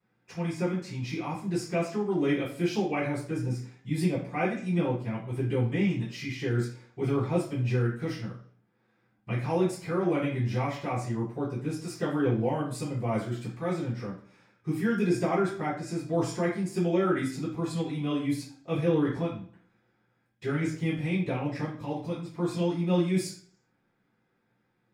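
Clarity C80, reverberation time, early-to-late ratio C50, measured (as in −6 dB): 10.5 dB, 0.55 s, 5.5 dB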